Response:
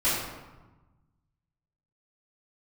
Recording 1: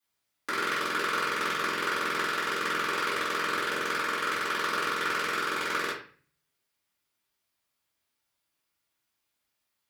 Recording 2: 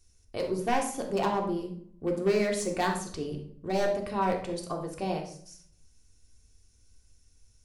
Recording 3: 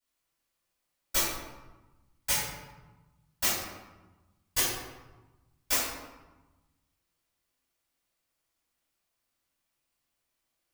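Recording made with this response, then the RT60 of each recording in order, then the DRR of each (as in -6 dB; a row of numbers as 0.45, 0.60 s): 3; 0.40, 0.55, 1.2 s; -11.0, 0.5, -14.0 dB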